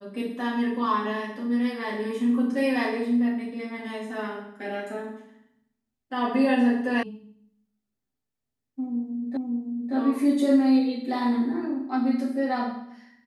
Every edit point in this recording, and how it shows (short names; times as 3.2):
7.03 sound cut off
9.37 repeat of the last 0.57 s